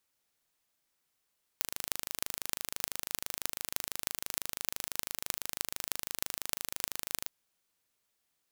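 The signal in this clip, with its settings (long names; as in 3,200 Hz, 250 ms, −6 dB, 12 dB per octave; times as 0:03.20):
impulse train 26 per second, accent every 8, −2 dBFS 5.66 s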